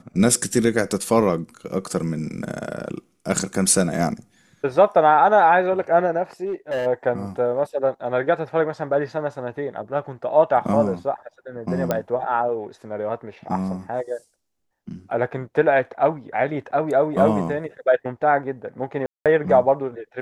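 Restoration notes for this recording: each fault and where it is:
6.45–6.87 s: clipped -21 dBFS
11.91 s: pop -8 dBFS
19.06–19.26 s: dropout 197 ms

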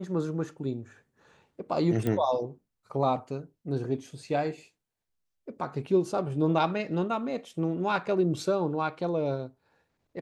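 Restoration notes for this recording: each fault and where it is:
2.07 s: pop -17 dBFS

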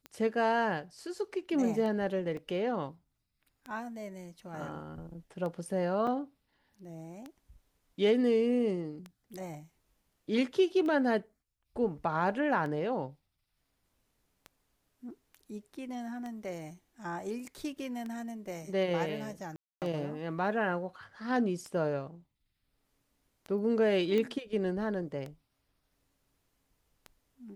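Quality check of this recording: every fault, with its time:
tick 33 1/3 rpm -28 dBFS
2.37 s: dropout 2.8 ms
6.07 s: dropout 3.4 ms
19.56–19.82 s: dropout 258 ms
24.18 s: pop -21 dBFS

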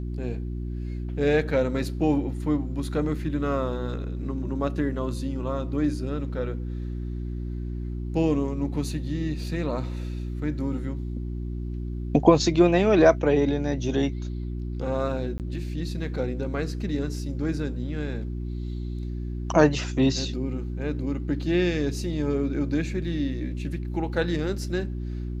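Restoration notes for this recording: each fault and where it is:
hum 60 Hz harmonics 6 -31 dBFS
15.38–15.40 s: dropout 18 ms

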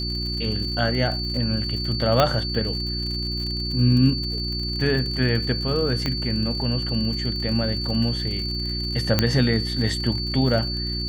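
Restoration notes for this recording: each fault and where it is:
crackle 65 per s -30 dBFS
hum 60 Hz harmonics 6 -29 dBFS
whine 4.5 kHz -28 dBFS
2.20 s: pop -4 dBFS
6.06 s: pop -11 dBFS
9.19 s: pop -3 dBFS

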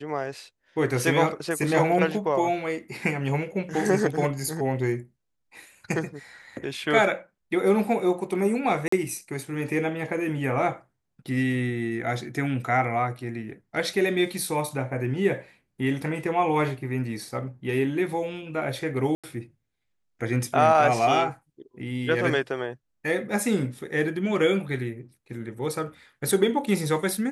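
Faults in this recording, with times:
8.88–8.92 s: dropout 44 ms
19.15–19.24 s: dropout 86 ms

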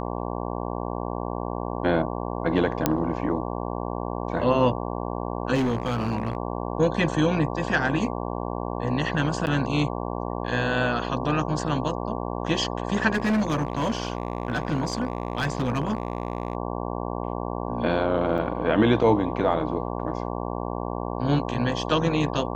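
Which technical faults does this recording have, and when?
buzz 60 Hz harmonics 19 -30 dBFS
2.86 s: pop -5 dBFS
5.54–6.37 s: clipped -20 dBFS
9.46–9.47 s: dropout 9.8 ms
13.13–16.55 s: clipped -19.5 dBFS
18.38 s: dropout 4.4 ms

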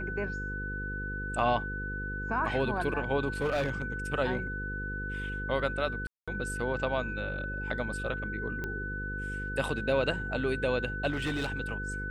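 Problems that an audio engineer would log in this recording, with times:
buzz 50 Hz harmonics 10 -38 dBFS
whine 1.5 kHz -36 dBFS
3.41–3.82 s: clipped -25 dBFS
6.07–6.28 s: dropout 206 ms
8.64 s: pop -22 dBFS
11.09–11.52 s: clipped -27 dBFS

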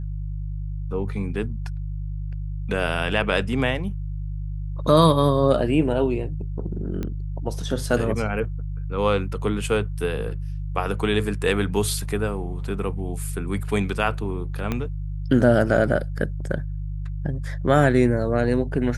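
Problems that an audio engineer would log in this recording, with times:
hum 50 Hz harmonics 3 -29 dBFS
7.03 s: pop -17 dBFS
14.72 s: pop -12 dBFS

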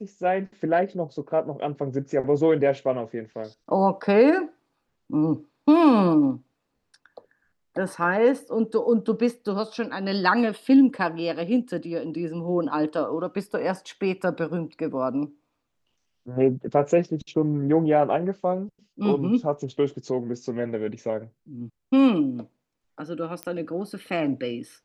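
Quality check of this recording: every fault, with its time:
23.43 s: pop -16 dBFS

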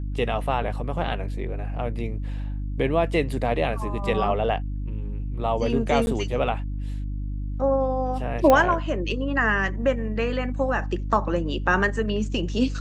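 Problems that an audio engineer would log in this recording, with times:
hum 50 Hz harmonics 6 -29 dBFS
6.06–6.07 s: dropout
8.50 s: pop -6 dBFS

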